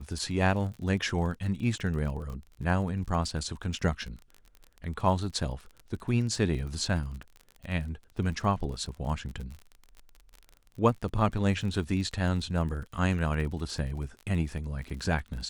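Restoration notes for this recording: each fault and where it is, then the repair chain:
crackle 35/s -37 dBFS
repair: de-click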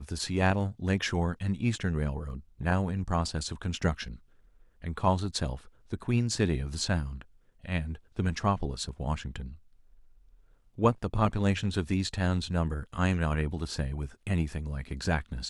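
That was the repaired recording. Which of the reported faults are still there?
none

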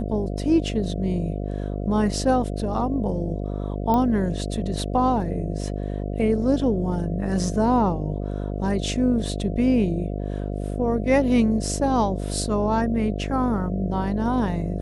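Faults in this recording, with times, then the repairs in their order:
buzz 50 Hz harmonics 14 -28 dBFS
3.94 pop -12 dBFS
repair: de-click; de-hum 50 Hz, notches 14

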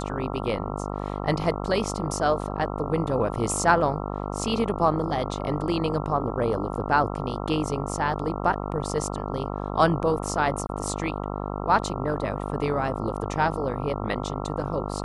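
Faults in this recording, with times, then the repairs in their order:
buzz 50 Hz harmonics 27 -31 dBFS
10.67–10.69 gap 21 ms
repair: de-hum 50 Hz, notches 27; interpolate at 10.67, 21 ms

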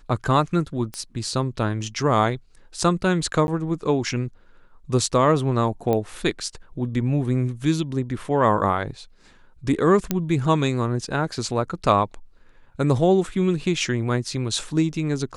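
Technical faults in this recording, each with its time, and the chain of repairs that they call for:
0.94 pop -17 dBFS
3.47–3.48 gap 11 ms
5.93 pop -12 dBFS
10.11 pop -7 dBFS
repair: de-click; interpolate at 3.47, 11 ms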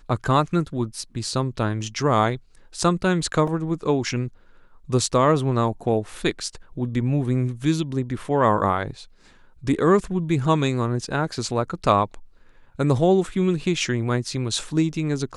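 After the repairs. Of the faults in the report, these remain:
none

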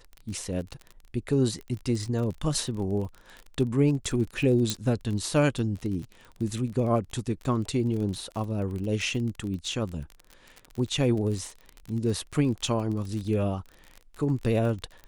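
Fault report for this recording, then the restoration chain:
crackle 33/s -33 dBFS
4.7 pop -11 dBFS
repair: de-click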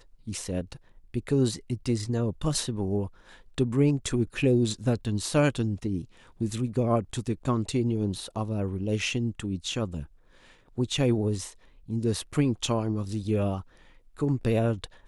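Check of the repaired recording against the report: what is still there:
none

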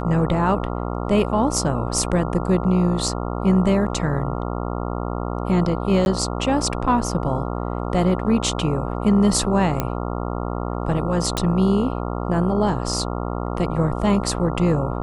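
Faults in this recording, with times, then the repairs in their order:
buzz 60 Hz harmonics 23 -26 dBFS
6.05–6.06 gap 11 ms
9.8 pop -7 dBFS
11.37 pop -8 dBFS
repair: de-click; de-hum 60 Hz, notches 23; interpolate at 6.05, 11 ms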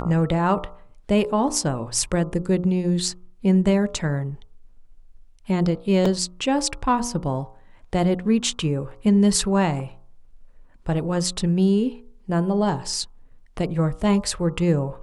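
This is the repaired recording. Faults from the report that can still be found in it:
none

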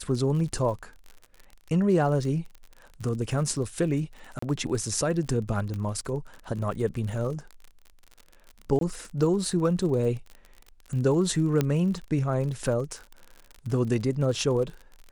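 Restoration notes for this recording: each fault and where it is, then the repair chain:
crackle 49/s -35 dBFS
4.39–4.42 gap 34 ms
5.74 pop -22 dBFS
8.79–8.81 gap 22 ms
11.61 pop -11 dBFS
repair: de-click; interpolate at 4.39, 34 ms; interpolate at 8.79, 22 ms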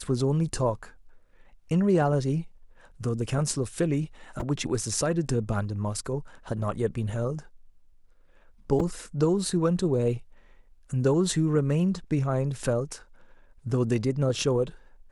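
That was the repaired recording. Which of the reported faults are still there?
11.61 pop

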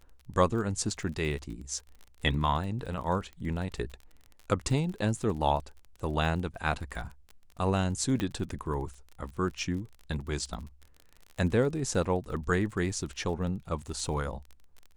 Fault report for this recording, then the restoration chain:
crackle 34/s -38 dBFS
8.2 pop -18 dBFS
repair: de-click

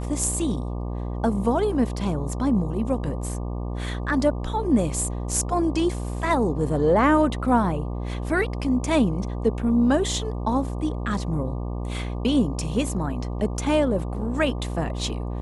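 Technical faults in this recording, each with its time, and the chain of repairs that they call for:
buzz 60 Hz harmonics 20 -29 dBFS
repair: de-hum 60 Hz, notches 20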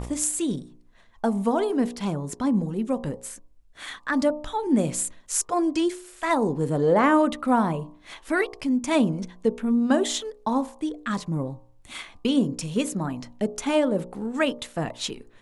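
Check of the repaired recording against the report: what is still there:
none

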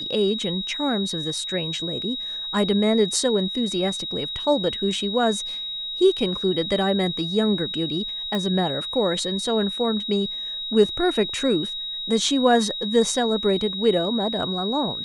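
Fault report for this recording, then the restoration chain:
tone 3800 Hz -28 dBFS
8.35 pop -14 dBFS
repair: de-click; notch 3800 Hz, Q 30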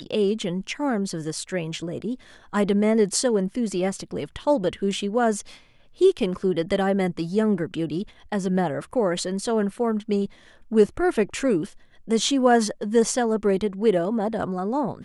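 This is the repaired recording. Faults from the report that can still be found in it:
none

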